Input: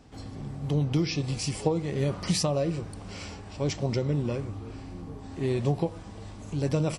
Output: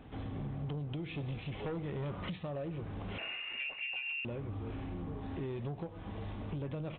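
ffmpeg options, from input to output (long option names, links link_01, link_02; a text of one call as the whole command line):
ffmpeg -i in.wav -filter_complex "[0:a]asettb=1/sr,asplit=3[link_01][link_02][link_03];[link_01]atrim=end=1.164[link_04];[link_02]atrim=start=1.16:end=2.11,asetpts=PTS-STARTPTS,afade=type=in:duration=0.004:curve=qsin,afade=type=out:start_time=0.946:duration=0.004:curve=qsin,volume=25.5dB,asoftclip=hard,volume=-25.5dB[link_05];[link_03]atrim=start=2.106[link_06];[link_04][link_05]acrossfade=duration=0.004:curve1=hsin:curve2=qsin[link_07];[link_07][link_06]acrossfade=duration=0.004:curve1=qsin:curve2=hsin,acompressor=threshold=-35dB:ratio=16,asettb=1/sr,asplit=3[link_08][link_09][link_10];[link_08]atrim=end=3.184[link_11];[link_09]atrim=start=3.18:end=4.25,asetpts=PTS-STARTPTS,afade=type=in:duration=0.004:curve=qsin,afade=type=out:start_time=1.066:duration=0.004:curve=qsin,lowpass=frequency=2500:width_type=q:width=0.5098,lowpass=frequency=2500:width_type=q:width=0.6013,lowpass=frequency=2500:width_type=q:width=0.9,lowpass=frequency=2500:width_type=q:width=2.563,afreqshift=-2900[link_12];[link_10]atrim=start=4.246[link_13];[link_11][link_12]acrossfade=duration=0.004:curve1=hsin:curve2=qsin[link_14];[link_14][link_13]acrossfade=duration=0.004:curve1=qsin:curve2=hsin,asoftclip=type=tanh:threshold=-34.5dB,volume=2dB" -ar 8000 -c:a adpcm_g726 -b:a 40k out.wav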